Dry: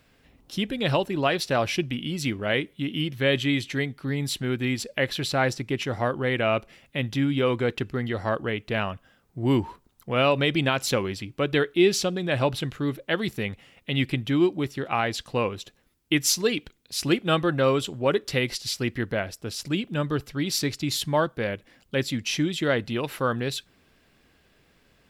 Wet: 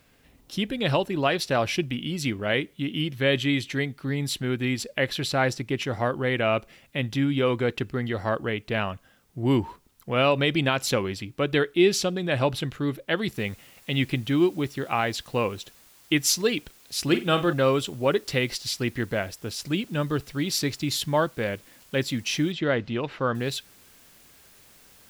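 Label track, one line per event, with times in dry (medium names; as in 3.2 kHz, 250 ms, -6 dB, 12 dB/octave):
13.350000	13.350000	noise floor step -70 dB -55 dB
17.040000	17.530000	flutter echo walls apart 7.9 m, dies away in 0.26 s
22.520000	23.350000	distance through air 170 m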